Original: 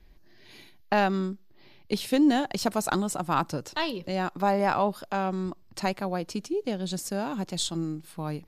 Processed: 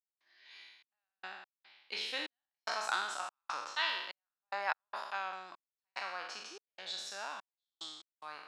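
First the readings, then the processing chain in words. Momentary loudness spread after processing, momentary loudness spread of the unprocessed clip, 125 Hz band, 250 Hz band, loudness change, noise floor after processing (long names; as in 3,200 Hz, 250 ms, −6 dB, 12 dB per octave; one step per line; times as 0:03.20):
19 LU, 9 LU, below −40 dB, −33.5 dB, −11.0 dB, below −85 dBFS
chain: peak hold with a decay on every bin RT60 1.01 s
gate pattern ".xxx..x.xxx..xxx" 73 BPM −60 dB
flat-topped band-pass 2,300 Hz, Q 0.62
level −4.5 dB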